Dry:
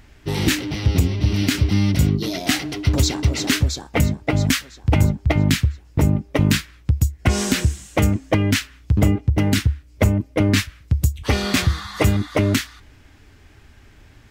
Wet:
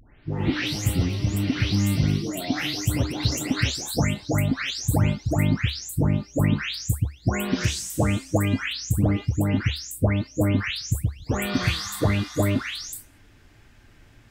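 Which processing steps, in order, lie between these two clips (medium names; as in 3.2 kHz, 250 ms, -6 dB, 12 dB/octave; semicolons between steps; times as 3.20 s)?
delay that grows with frequency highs late, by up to 383 ms; trim -3 dB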